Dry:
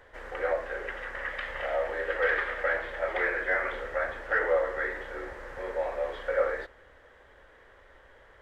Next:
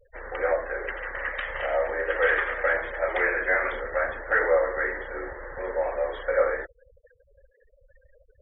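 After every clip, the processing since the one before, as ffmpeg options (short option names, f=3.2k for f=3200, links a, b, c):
-af "afftfilt=real='re*gte(hypot(re,im),0.00794)':imag='im*gte(hypot(re,im),0.00794)':win_size=1024:overlap=0.75,volume=4dB"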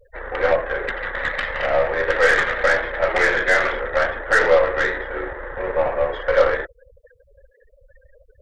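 -af "aeval=exprs='0.299*(cos(1*acos(clip(val(0)/0.299,-1,1)))-cos(1*PI/2))+0.0188*(cos(8*acos(clip(val(0)/0.299,-1,1)))-cos(8*PI/2))':c=same,volume=6.5dB"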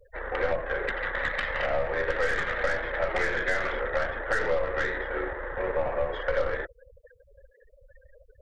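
-filter_complex "[0:a]acrossover=split=240[a][b];[b]acompressor=threshold=-22dB:ratio=6[c];[a][c]amix=inputs=2:normalize=0,volume=-3dB"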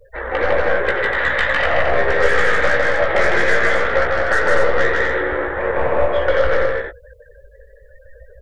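-filter_complex "[0:a]asplit=2[a][b];[b]adelay=17,volume=-5.5dB[c];[a][c]amix=inputs=2:normalize=0,aecho=1:1:154.5|244.9:0.794|0.562,volume=8dB"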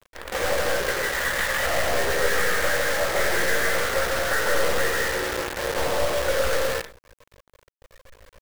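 -af "acrusher=bits=4:dc=4:mix=0:aa=0.000001,volume=-8dB"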